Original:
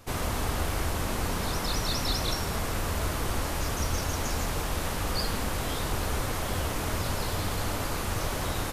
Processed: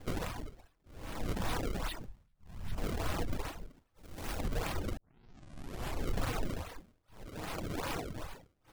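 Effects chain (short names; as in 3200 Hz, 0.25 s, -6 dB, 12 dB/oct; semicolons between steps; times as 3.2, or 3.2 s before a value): rattling part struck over -29 dBFS, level -26 dBFS; 2.04–2.78 brick-wall FIR band-stop 240–8600 Hz; limiter -25.5 dBFS, peak gain reduction 9.5 dB; reverb RT60 0.40 s, pre-delay 4 ms, DRR 5.5 dB; tremolo 0.64 Hz, depth 98%; 7.28–8.22 low shelf 71 Hz -10.5 dB; decimation with a swept rate 29×, swing 160% 2.5 Hz; reverb removal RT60 0.73 s; 3.94–4.39 high shelf 4500 Hz +6.5 dB; 4.97 tape start 1.13 s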